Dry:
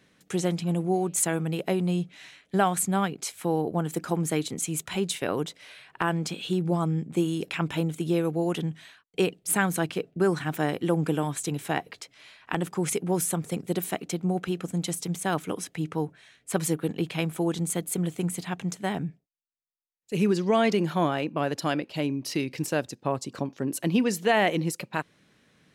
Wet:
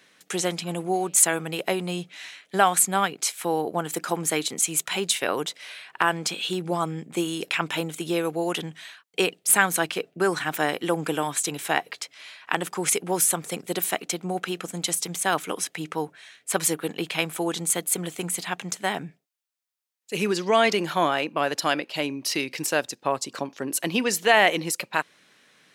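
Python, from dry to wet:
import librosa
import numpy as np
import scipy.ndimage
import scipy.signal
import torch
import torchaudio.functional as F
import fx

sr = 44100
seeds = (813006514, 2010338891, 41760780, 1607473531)

y = fx.highpass(x, sr, hz=890.0, slope=6)
y = y * librosa.db_to_amplitude(8.0)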